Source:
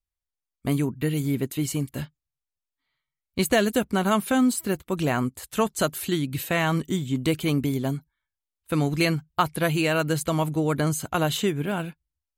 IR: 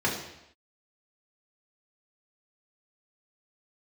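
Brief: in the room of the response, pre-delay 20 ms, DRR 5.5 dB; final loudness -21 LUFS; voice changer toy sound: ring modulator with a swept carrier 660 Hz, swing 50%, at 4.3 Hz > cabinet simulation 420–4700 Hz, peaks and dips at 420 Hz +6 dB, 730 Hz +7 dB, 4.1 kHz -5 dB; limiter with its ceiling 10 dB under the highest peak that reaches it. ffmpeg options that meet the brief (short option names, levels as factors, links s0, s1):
-filter_complex "[0:a]alimiter=limit=0.141:level=0:latency=1,asplit=2[s0][s1];[1:a]atrim=start_sample=2205,adelay=20[s2];[s1][s2]afir=irnorm=-1:irlink=0,volume=0.133[s3];[s0][s3]amix=inputs=2:normalize=0,aeval=exprs='val(0)*sin(2*PI*660*n/s+660*0.5/4.3*sin(2*PI*4.3*n/s))':c=same,highpass=420,equalizer=f=420:t=q:w=4:g=6,equalizer=f=730:t=q:w=4:g=7,equalizer=f=4100:t=q:w=4:g=-5,lowpass=f=4700:w=0.5412,lowpass=f=4700:w=1.3066,volume=2.24"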